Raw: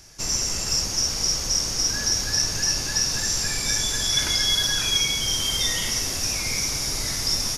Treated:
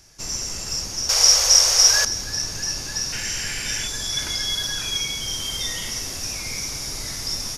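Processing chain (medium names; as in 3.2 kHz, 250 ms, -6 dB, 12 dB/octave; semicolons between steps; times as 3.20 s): 1.09–2.05 s: FFT filter 100 Hz 0 dB, 230 Hz -17 dB, 520 Hz +13 dB; 3.12–3.88 s: painted sound noise 1.4–3.2 kHz -31 dBFS; trim -3.5 dB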